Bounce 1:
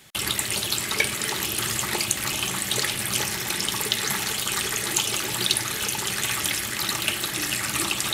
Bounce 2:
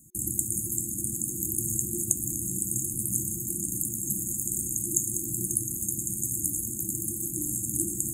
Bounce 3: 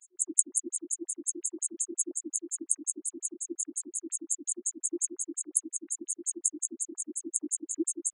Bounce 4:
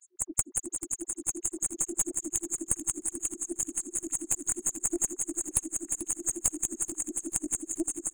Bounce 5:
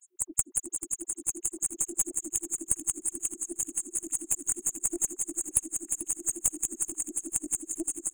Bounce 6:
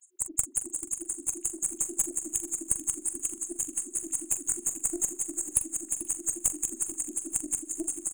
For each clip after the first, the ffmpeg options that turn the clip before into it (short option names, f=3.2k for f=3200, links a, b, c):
-af "afftfilt=real='re*(1-between(b*sr/4096,360,6400))':imag='im*(1-between(b*sr/4096,360,6400))':win_size=4096:overlap=0.75"
-af "highshelf=f=12k:g=-3.5,acontrast=84,afftfilt=real='re*between(b*sr/1024,330*pow(7500/330,0.5+0.5*sin(2*PI*5.6*pts/sr))/1.41,330*pow(7500/330,0.5+0.5*sin(2*PI*5.6*pts/sr))*1.41)':imag='im*between(b*sr/1024,330*pow(7500/330,0.5+0.5*sin(2*PI*5.6*pts/sr))/1.41,330*pow(7500/330,0.5+0.5*sin(2*PI*5.6*pts/sr))*1.41)':win_size=1024:overlap=0.75"
-af "dynaudnorm=f=300:g=7:m=5dB,aeval=exprs='(tanh(5.01*val(0)+0.45)-tanh(0.45))/5.01':c=same,aecho=1:1:438|876|1314|1752|2190|2628:0.224|0.128|0.0727|0.0415|0.0236|0.0135"
-af "aexciter=amount=1.3:drive=1.2:freq=2.5k,volume=-3.5dB"
-filter_complex "[0:a]asplit=2[a][b];[b]adelay=43,volume=-11dB[c];[a][c]amix=inputs=2:normalize=0"